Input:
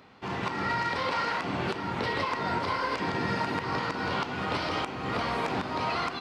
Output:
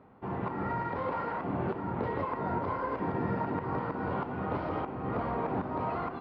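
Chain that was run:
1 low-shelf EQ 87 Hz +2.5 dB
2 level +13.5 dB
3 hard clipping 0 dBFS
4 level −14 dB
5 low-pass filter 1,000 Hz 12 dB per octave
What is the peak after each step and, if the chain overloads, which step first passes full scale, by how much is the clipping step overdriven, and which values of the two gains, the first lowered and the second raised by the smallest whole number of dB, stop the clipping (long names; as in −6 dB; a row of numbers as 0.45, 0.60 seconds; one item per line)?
−18.5, −5.0, −5.0, −19.0, −20.0 dBFS
no step passes full scale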